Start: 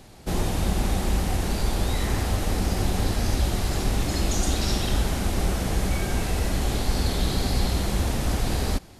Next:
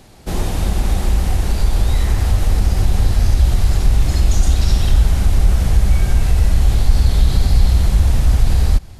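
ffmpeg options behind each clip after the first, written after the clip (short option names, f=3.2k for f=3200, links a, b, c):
-filter_complex "[0:a]asubboost=boost=5:cutoff=120,asplit=2[a][b];[b]alimiter=limit=-11dB:level=0:latency=1:release=119,volume=1.5dB[c];[a][c]amix=inputs=2:normalize=0,volume=-3.5dB"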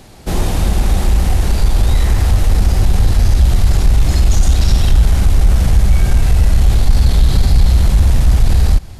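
-af "acontrast=39,volume=-1dB"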